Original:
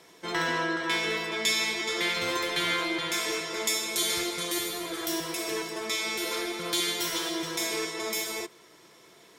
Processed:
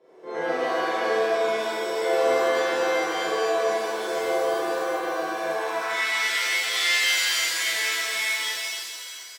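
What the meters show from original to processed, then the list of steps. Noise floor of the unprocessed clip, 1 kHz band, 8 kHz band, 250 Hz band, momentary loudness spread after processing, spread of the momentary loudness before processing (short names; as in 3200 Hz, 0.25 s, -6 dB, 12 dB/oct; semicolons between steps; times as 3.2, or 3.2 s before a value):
-56 dBFS, +7.5 dB, +1.0 dB, -1.5 dB, 7 LU, 5 LU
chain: high shelf 9600 Hz +10.5 dB; loudspeakers at several distances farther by 13 m 0 dB, 98 m -11 dB; band-pass sweep 480 Hz -> 2000 Hz, 5.24–6.07; shimmer reverb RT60 1.7 s, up +7 st, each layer -2 dB, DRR -8 dB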